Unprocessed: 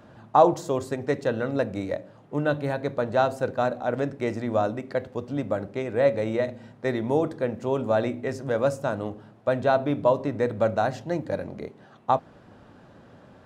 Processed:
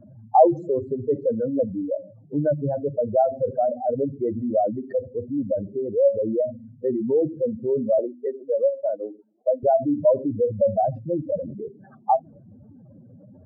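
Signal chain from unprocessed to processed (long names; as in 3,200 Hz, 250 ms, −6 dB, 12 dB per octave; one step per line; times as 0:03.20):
expanding power law on the bin magnitudes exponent 3.7
0:07.99–0:09.63: Butterworth high-pass 320 Hz 36 dB per octave
level +3.5 dB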